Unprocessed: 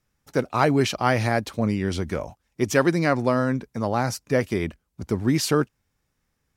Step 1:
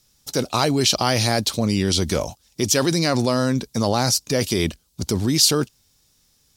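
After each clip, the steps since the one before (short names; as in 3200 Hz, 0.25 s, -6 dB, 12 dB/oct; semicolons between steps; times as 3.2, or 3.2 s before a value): resonant high shelf 2800 Hz +12 dB, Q 1.5; in parallel at +1.5 dB: negative-ratio compressor -26 dBFS, ratio -1; on the sum: gain -3 dB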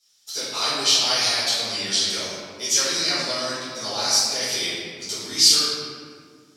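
band-pass 4700 Hz, Q 0.77; reverb RT60 2.0 s, pre-delay 4 ms, DRR -15 dB; gain -8.5 dB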